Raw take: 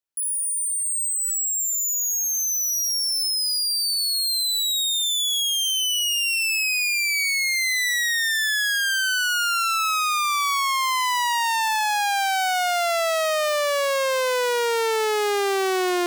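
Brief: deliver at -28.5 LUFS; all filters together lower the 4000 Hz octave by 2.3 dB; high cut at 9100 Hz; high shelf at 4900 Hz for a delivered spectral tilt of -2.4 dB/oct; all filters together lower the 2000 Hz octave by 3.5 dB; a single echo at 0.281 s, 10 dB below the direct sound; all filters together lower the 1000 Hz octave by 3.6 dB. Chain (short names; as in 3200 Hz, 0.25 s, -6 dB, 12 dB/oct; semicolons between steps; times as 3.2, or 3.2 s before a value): LPF 9100 Hz; bell 1000 Hz -4 dB; bell 2000 Hz -3 dB; bell 4000 Hz -5 dB; high shelf 4900 Hz +6.5 dB; echo 0.281 s -10 dB; gain -7 dB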